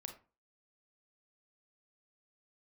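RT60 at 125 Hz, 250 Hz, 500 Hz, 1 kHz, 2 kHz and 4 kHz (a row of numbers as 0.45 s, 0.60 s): 0.40 s, 0.40 s, 0.35 s, 0.35 s, 0.30 s, 0.20 s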